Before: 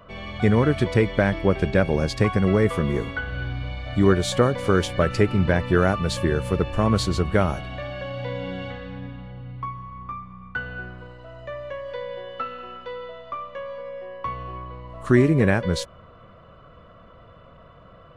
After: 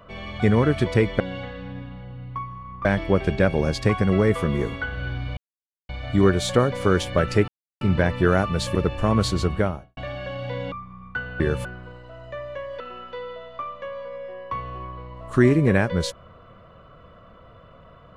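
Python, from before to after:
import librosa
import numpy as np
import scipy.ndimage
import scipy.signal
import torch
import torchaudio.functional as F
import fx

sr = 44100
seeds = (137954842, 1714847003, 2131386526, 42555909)

y = fx.studio_fade_out(x, sr, start_s=7.22, length_s=0.5)
y = fx.edit(y, sr, fx.insert_silence(at_s=3.72, length_s=0.52),
    fx.insert_silence(at_s=5.31, length_s=0.33),
    fx.move(start_s=6.25, length_s=0.25, to_s=10.8),
    fx.move(start_s=8.47, length_s=1.65, to_s=1.2),
    fx.cut(start_s=11.95, length_s=0.58), tone=tone)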